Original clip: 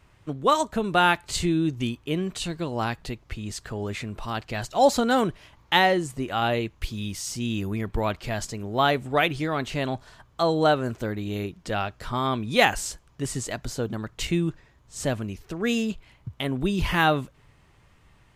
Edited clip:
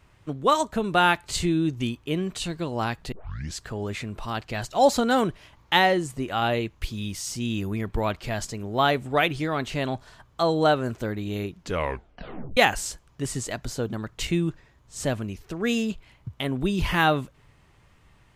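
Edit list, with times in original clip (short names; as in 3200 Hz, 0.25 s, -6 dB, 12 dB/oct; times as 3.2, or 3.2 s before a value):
3.12 tape start 0.46 s
11.59 tape stop 0.98 s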